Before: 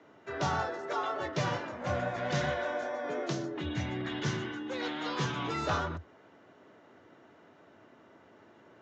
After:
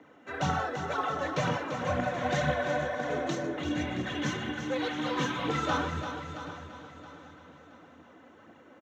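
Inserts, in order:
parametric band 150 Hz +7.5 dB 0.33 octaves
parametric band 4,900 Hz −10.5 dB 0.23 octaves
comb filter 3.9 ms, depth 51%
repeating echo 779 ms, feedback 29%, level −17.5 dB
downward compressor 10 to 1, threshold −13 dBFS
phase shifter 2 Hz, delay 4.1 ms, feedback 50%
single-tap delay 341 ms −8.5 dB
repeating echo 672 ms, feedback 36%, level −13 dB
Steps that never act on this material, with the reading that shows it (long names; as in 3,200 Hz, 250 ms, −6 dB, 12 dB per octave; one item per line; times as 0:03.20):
downward compressor, threshold −13 dBFS: peak of its input −17.0 dBFS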